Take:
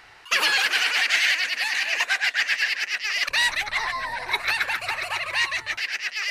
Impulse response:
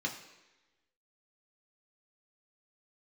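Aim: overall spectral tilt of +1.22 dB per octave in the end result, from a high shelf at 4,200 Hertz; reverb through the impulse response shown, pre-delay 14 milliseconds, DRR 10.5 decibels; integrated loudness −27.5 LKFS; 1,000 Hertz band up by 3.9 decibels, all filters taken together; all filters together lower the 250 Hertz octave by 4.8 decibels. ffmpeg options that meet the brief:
-filter_complex "[0:a]equalizer=frequency=250:width_type=o:gain=-8,equalizer=frequency=1000:width_type=o:gain=5.5,highshelf=frequency=4200:gain=-7,asplit=2[link_01][link_02];[1:a]atrim=start_sample=2205,adelay=14[link_03];[link_02][link_03]afir=irnorm=-1:irlink=0,volume=-14.5dB[link_04];[link_01][link_04]amix=inputs=2:normalize=0,volume=-5dB"

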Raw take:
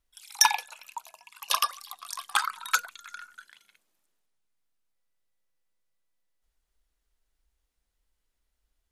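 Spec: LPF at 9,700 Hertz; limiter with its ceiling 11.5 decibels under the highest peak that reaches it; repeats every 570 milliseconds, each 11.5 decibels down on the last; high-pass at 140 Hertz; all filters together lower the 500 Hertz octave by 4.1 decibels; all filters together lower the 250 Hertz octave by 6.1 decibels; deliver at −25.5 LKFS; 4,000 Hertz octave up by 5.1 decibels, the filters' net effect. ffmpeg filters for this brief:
ffmpeg -i in.wav -af "highpass=140,lowpass=9700,equalizer=frequency=250:width_type=o:gain=-6,equalizer=frequency=500:width_type=o:gain=-5,equalizer=frequency=4000:width_type=o:gain=7.5,alimiter=limit=-13dB:level=0:latency=1,aecho=1:1:570|1140|1710:0.266|0.0718|0.0194,volume=6.5dB" out.wav

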